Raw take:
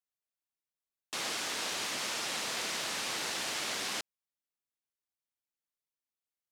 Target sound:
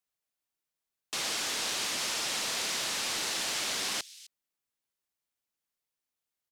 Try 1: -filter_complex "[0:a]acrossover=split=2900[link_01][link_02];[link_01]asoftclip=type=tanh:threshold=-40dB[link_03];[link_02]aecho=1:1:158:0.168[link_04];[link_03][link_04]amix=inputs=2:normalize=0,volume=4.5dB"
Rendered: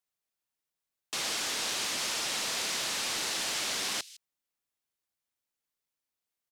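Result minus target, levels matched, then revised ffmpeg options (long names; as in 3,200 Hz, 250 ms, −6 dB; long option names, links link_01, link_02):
echo 100 ms early
-filter_complex "[0:a]acrossover=split=2900[link_01][link_02];[link_01]asoftclip=type=tanh:threshold=-40dB[link_03];[link_02]aecho=1:1:258:0.168[link_04];[link_03][link_04]amix=inputs=2:normalize=0,volume=4.5dB"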